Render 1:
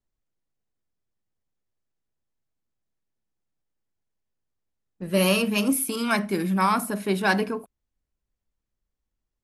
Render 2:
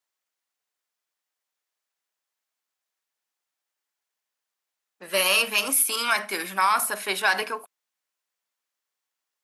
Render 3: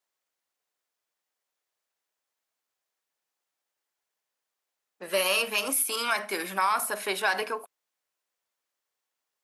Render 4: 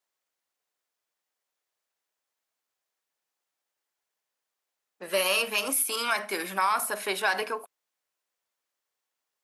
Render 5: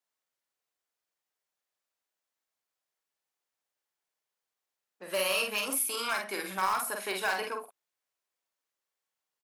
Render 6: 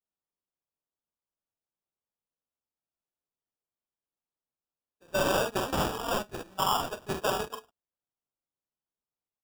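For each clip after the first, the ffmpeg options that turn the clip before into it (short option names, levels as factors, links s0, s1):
-af "highpass=930,alimiter=limit=0.112:level=0:latency=1:release=50,volume=2.51"
-filter_complex "[0:a]equalizer=f=490:w=0.78:g=5,asplit=2[s0][s1];[s1]acompressor=threshold=0.0355:ratio=6,volume=1.26[s2];[s0][s2]amix=inputs=2:normalize=0,volume=0.398"
-af anull
-filter_complex "[0:a]asplit=2[s0][s1];[s1]aeval=exprs='(mod(6.31*val(0)+1,2)-1)/6.31':c=same,volume=0.316[s2];[s0][s2]amix=inputs=2:normalize=0,asplit=2[s3][s4];[s4]adelay=48,volume=0.631[s5];[s3][s5]amix=inputs=2:normalize=0,volume=0.422"
-af "agate=range=0.158:threshold=0.0224:ratio=16:detection=peak,acrusher=samples=21:mix=1:aa=0.000001,volume=1.33"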